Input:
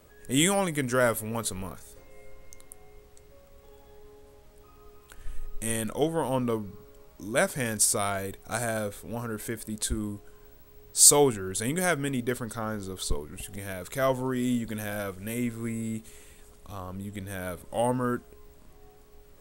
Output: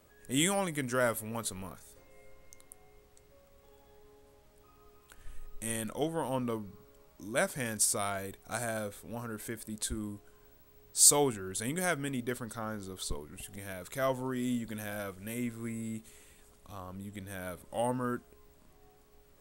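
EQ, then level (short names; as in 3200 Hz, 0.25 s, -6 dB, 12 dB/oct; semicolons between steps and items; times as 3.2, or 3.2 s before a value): low shelf 79 Hz -5.5 dB; bell 440 Hz -3 dB 0.32 oct; -5.0 dB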